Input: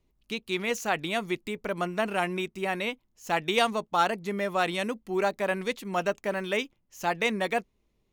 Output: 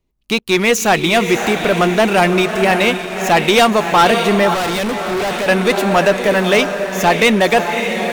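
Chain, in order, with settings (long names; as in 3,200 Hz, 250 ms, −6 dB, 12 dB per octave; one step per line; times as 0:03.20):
feedback delay with all-pass diffusion 589 ms, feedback 44%, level −9 dB
leveller curve on the samples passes 3
0:04.54–0:05.48: hard clipping −23.5 dBFS, distortion −12 dB
level +6.5 dB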